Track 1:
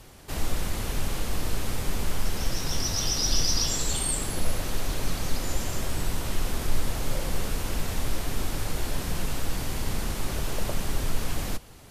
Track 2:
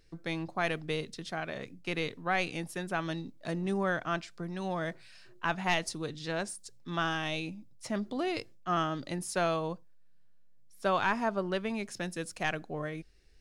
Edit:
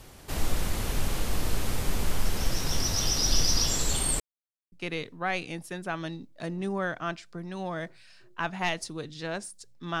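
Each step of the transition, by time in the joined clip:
track 1
4.20–4.72 s: mute
4.72 s: go over to track 2 from 1.77 s

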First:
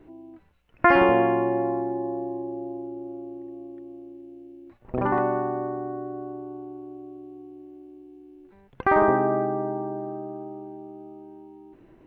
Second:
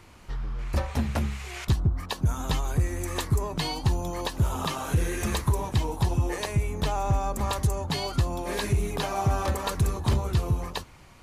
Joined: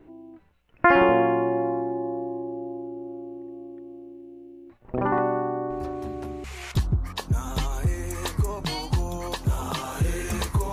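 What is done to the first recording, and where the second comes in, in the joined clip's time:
first
5.70 s: add second from 0.63 s 0.74 s -13.5 dB
6.44 s: go over to second from 1.37 s

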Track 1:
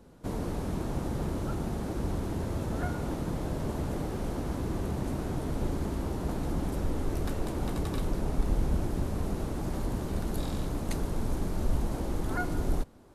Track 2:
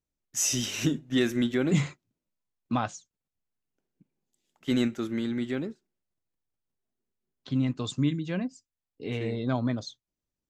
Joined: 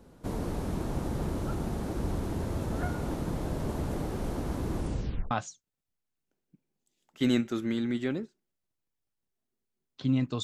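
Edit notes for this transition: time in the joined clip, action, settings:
track 1
4.76 s: tape stop 0.55 s
5.31 s: go over to track 2 from 2.78 s

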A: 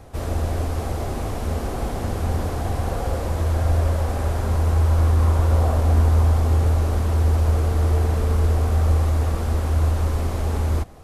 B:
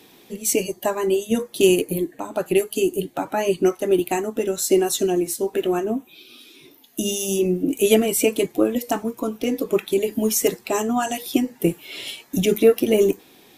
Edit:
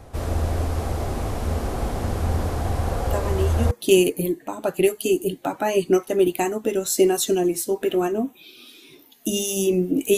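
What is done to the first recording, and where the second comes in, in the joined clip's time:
A
3.09 s: add B from 0.81 s 0.62 s -6.5 dB
3.71 s: go over to B from 1.43 s

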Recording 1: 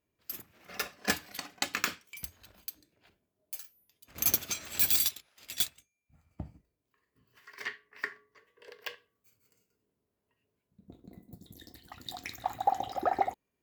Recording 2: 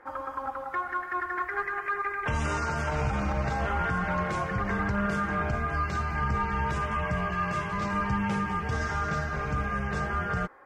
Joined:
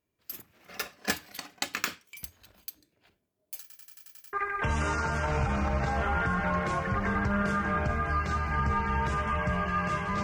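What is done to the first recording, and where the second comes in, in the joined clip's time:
recording 1
3.61 s: stutter in place 0.09 s, 8 plays
4.33 s: go over to recording 2 from 1.97 s

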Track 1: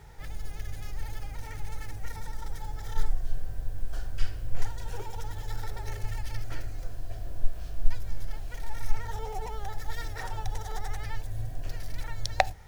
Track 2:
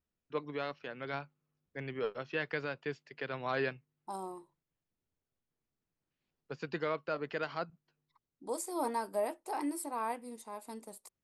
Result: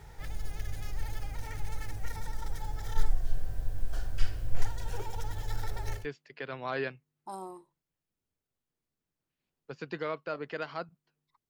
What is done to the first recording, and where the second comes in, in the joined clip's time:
track 1
6.00 s: go over to track 2 from 2.81 s, crossfade 0.14 s

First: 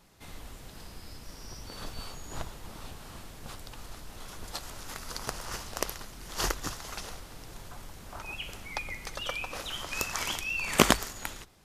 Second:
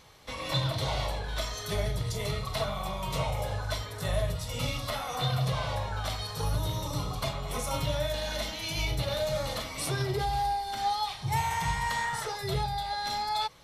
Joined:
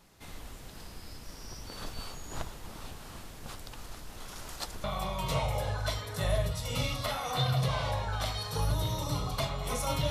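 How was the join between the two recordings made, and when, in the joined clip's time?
first
4.35–4.84 s: reverse
4.84 s: go over to second from 2.68 s

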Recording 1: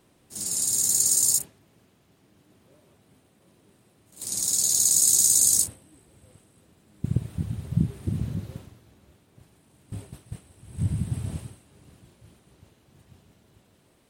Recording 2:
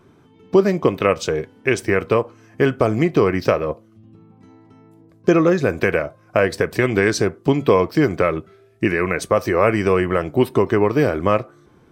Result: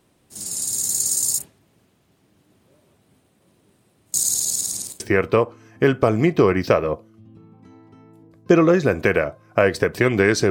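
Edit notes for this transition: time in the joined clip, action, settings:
recording 1
4.14–5.00 s: reverse
5.00 s: go over to recording 2 from 1.78 s

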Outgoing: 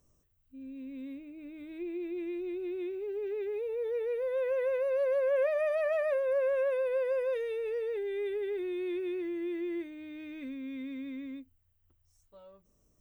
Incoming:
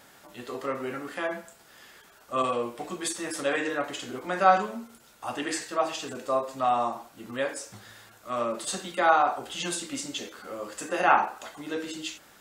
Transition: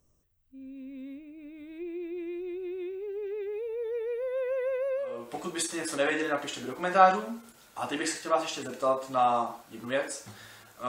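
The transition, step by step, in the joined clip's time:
outgoing
5.14 s: go over to incoming from 2.60 s, crossfade 0.42 s quadratic

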